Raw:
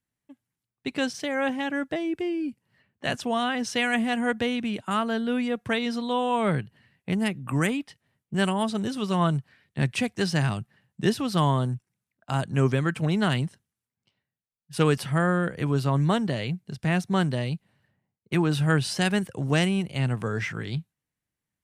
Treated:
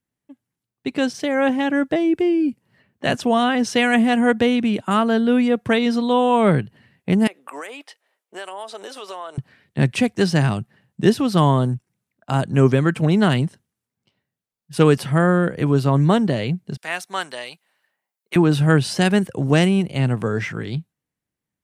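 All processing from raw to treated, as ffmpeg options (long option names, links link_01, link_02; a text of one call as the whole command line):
ffmpeg -i in.wav -filter_complex "[0:a]asettb=1/sr,asplit=3[link_01][link_02][link_03];[link_01]atrim=end=7.274[link_04];[link_02]atrim=start=7.27:end=9.38,asetpts=PTS-STARTPTS,afade=type=in:duration=0.004:curve=qsin,afade=type=out:start_time=2.106:duration=0.004:curve=qsin,highpass=frequency=490:width=0.5412,highpass=frequency=490:width=1.3066,acompressor=threshold=-38dB:ratio=4:attack=3.2:release=140:knee=1:detection=peak[link_05];[link_03]atrim=start=9.376[link_06];[link_04][link_05]acrossfade=duration=0.004:curve1=hsin:curve2=qsin[link_07];[link_07][link_06]acrossfade=duration=0.004:curve1=qsin:curve2=hsin,asettb=1/sr,asplit=3[link_08][link_09][link_10];[link_08]atrim=end=16.774[link_11];[link_09]atrim=start=16.77:end=18.36,asetpts=PTS-STARTPTS,afade=type=in:duration=0.004:curve=qsin,afade=type=out:start_time=1.586:duration=0.004:curve=qsin,highpass=940,highshelf=frequency=9800:gain=7.5[link_12];[link_10]atrim=start=18.356[link_13];[link_11][link_12]acrossfade=duration=0.004:curve1=hsin:curve2=qsin[link_14];[link_14][link_13]acrossfade=duration=0.004:curve1=qsin:curve2=hsin,equalizer=frequency=340:width=0.47:gain=5.5,dynaudnorm=framelen=140:gausssize=17:maxgain=5dB" out.wav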